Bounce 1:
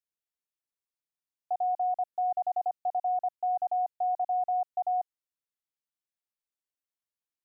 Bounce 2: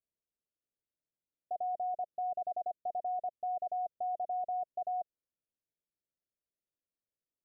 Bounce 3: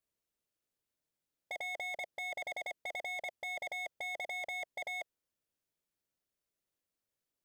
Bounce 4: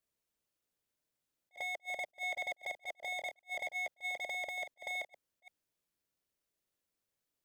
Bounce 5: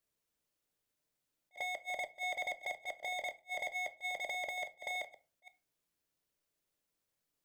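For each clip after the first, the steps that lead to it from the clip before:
Butterworth low-pass 660 Hz 72 dB per octave; level +4 dB
wave folding −38 dBFS; level +5 dB
delay that plays each chunk backwards 261 ms, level −10 dB; level that may rise only so fast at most 460 dB per second; level +1 dB
rectangular room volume 200 cubic metres, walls furnished, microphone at 0.42 metres; level +1 dB

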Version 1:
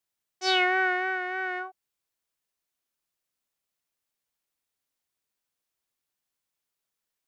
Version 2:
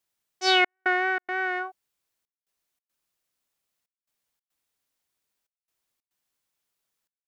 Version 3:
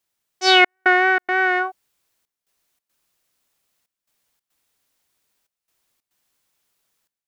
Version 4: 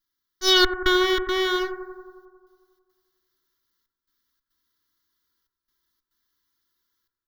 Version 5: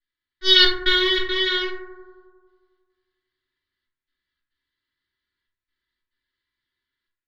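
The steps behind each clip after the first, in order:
gate pattern "xxxxxx..xxx.xxx" 140 BPM −60 dB; level +3.5 dB
automatic gain control gain up to 6 dB; level +3.5 dB
lower of the sound and its delayed copy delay 3 ms; phaser with its sweep stopped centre 2,500 Hz, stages 6; bucket-brigade delay 90 ms, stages 1,024, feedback 71%, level −10.5 dB
low-pass that shuts in the quiet parts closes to 2,400 Hz, open at −16.5 dBFS; flat-topped bell 2,800 Hz +14.5 dB; convolution reverb RT60 0.55 s, pre-delay 3 ms, DRR −7 dB; level −14.5 dB

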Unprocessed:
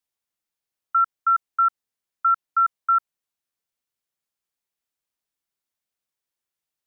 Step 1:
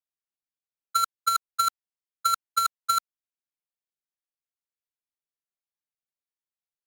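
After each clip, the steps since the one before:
each half-wave held at its own peak
noise gate −16 dBFS, range −31 dB
compressor whose output falls as the input rises −25 dBFS, ratio −0.5
level +5.5 dB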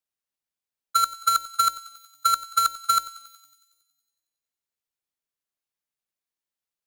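feedback echo with a high-pass in the loop 92 ms, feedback 69%, high-pass 1,100 Hz, level −16.5 dB
level +3 dB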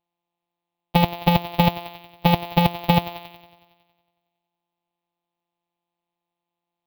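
samples sorted by size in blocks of 256 samples
drawn EQ curve 500 Hz 0 dB, 770 Hz +14 dB, 1,500 Hz −9 dB, 2,500 Hz +8 dB, 3,800 Hz +7 dB, 7,600 Hz −23 dB, 15,000 Hz +9 dB
level +2.5 dB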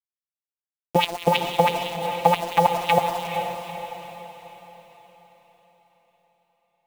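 auto-filter band-pass sine 6 Hz 410–3,300 Hz
bit reduction 7 bits
feedback delay with all-pass diffusion 458 ms, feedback 47%, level −7 dB
level +8 dB

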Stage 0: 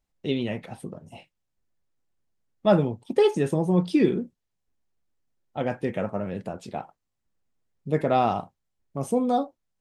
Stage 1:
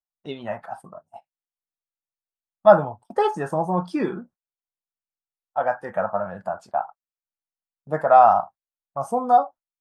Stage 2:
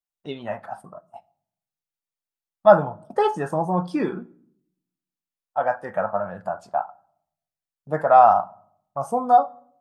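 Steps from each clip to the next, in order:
noise reduction from a noise print of the clip's start 9 dB; noise gate −46 dBFS, range −17 dB; flat-topped bell 1,000 Hz +15 dB; level −4.5 dB
convolution reverb RT60 0.70 s, pre-delay 7 ms, DRR 18 dB

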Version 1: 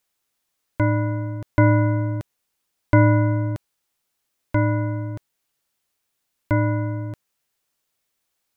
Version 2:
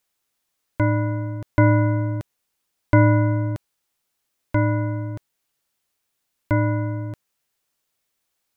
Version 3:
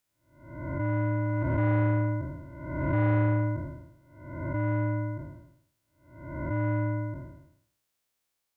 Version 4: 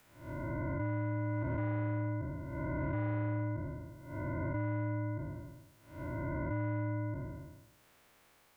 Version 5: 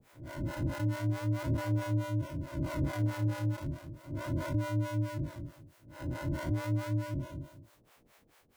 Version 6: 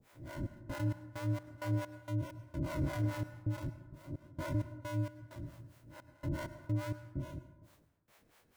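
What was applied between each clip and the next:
no processing that can be heard
spectrum smeared in time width 483 ms; soft clipping −15 dBFS, distortion −18 dB; level −2.5 dB
multiband upward and downward compressor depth 100%; level −7.5 dB
in parallel at −4 dB: sample-and-hold swept by an LFO 26×, swing 100% 0.37 Hz; on the sum: two-band tremolo in antiphase 4.6 Hz, depth 100%, crossover 480 Hz; level +3.5 dB
gate pattern "xx.x.x.x.x.x" 65 BPM −24 dB; convolution reverb RT60 1.1 s, pre-delay 93 ms, DRR 12.5 dB; level −2.5 dB

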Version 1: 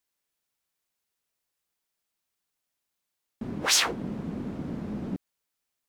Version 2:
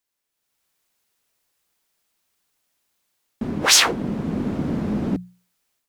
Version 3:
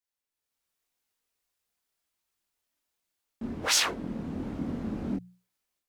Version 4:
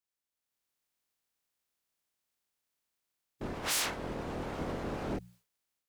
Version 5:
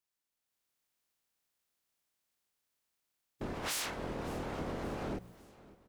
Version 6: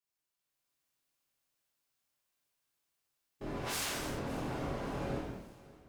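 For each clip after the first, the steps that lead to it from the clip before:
automatic gain control gain up to 9.5 dB; mains-hum notches 60/120/180 Hz; level +1 dB
multi-voice chorus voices 6, 0.75 Hz, delay 24 ms, depth 2.3 ms; level −7 dB
ceiling on every frequency bin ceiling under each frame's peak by 18 dB; soft clipping −25 dBFS, distortion −11 dB; level −2 dB
downward compressor, threshold −36 dBFS, peak gain reduction 6.5 dB; repeating echo 564 ms, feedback 47%, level −20.5 dB; level +1 dB
reverb whose tail is shaped and stops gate 400 ms falling, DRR −7.5 dB; level −7.5 dB

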